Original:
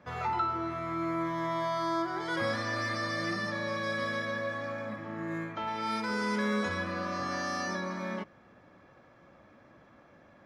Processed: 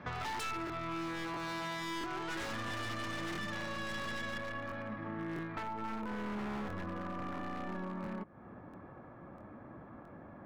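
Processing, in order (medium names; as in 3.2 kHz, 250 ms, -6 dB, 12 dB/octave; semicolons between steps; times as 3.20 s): tracing distortion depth 0.32 ms; low-pass 3.9 kHz 12 dB/octave, from 4.38 s 2.1 kHz, from 5.63 s 1.1 kHz; wavefolder -29.5 dBFS; compression 5:1, threshold -47 dBFS, peak gain reduction 13 dB; peaking EQ 550 Hz -5.5 dB 0.52 oct; crackling interface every 0.67 s, samples 1024, repeat, from 0.65 s; trim +9 dB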